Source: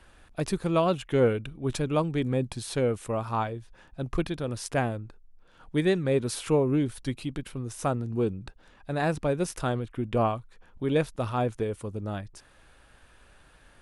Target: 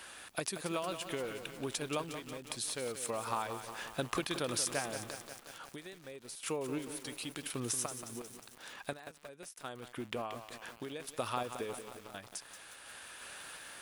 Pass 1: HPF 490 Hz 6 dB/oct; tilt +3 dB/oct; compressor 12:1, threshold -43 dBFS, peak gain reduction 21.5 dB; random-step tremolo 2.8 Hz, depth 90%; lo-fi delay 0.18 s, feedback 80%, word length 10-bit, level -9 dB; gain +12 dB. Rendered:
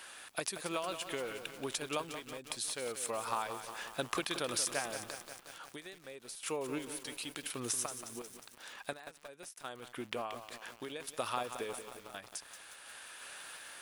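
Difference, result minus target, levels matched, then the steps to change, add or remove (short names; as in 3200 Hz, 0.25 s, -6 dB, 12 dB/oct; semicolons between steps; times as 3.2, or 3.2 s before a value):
125 Hz band -5.5 dB
change: HPF 160 Hz 6 dB/oct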